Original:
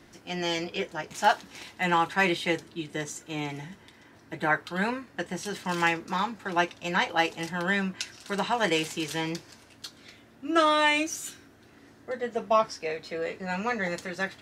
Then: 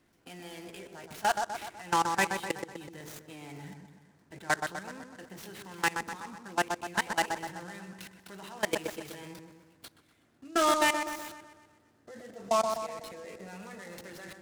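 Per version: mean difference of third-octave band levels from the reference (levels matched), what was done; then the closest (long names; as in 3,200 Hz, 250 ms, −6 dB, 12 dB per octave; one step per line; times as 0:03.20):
7.0 dB: output level in coarse steps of 23 dB
soft clipping −15 dBFS, distortion −21 dB
delay with a low-pass on its return 125 ms, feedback 52%, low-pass 1,700 Hz, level −5 dB
short delay modulated by noise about 5,300 Hz, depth 0.032 ms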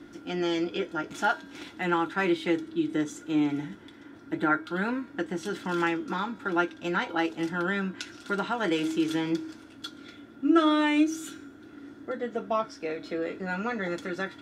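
4.5 dB: high-shelf EQ 3,900 Hz −6 dB
hum removal 319.2 Hz, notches 28
in parallel at +3 dB: downward compressor, threshold −34 dBFS, peak gain reduction 16.5 dB
on the sum: hollow resonant body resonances 300/1,400/3,400 Hz, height 15 dB, ringing for 45 ms
level −8 dB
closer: second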